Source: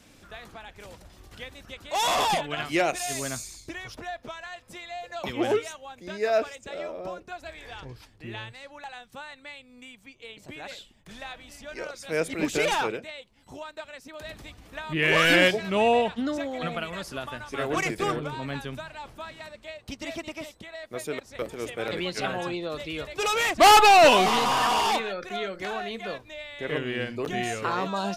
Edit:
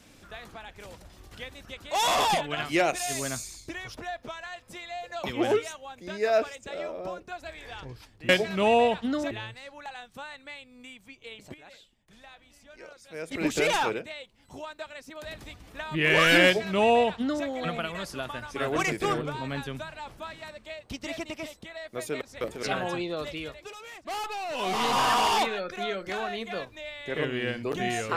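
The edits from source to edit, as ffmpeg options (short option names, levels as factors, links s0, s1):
-filter_complex "[0:a]asplit=8[s0][s1][s2][s3][s4][s5][s6][s7];[s0]atrim=end=8.292[s8];[s1]atrim=start=15.428:end=16.452[s9];[s2]atrim=start=8.288:end=10.522[s10];[s3]atrim=start=10.518:end=12.292,asetpts=PTS-STARTPTS,volume=0.282[s11];[s4]atrim=start=12.288:end=21.612[s12];[s5]atrim=start=22.158:end=23.26,asetpts=PTS-STARTPTS,afade=t=out:st=0.652:d=0.45:silence=0.105925[s13];[s6]atrim=start=23.26:end=24.07,asetpts=PTS-STARTPTS,volume=0.106[s14];[s7]atrim=start=24.07,asetpts=PTS-STARTPTS,afade=t=in:d=0.45:silence=0.105925[s15];[s8][s9]acrossfade=d=0.004:c1=hsin:c2=hsin[s16];[s16][s10]acrossfade=d=0.004:c1=hsin:c2=hsin[s17];[s17][s11]acrossfade=d=0.004:c1=hsin:c2=hsin[s18];[s18][s12]acrossfade=d=0.004:c1=hsin:c2=hsin[s19];[s13][s14][s15]concat=n=3:v=0:a=1[s20];[s19][s20]acrossfade=d=0.004:c1=hsin:c2=hsin"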